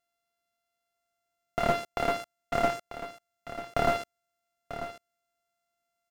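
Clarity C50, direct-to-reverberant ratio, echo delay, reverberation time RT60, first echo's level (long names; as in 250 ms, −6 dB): no reverb audible, no reverb audible, 942 ms, no reverb audible, −11.5 dB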